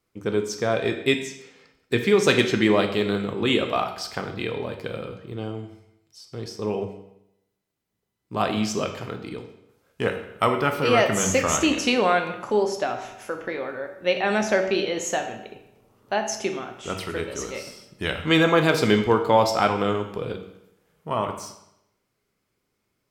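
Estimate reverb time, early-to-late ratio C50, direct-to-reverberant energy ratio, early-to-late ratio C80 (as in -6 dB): 0.80 s, 8.5 dB, 5.0 dB, 10.5 dB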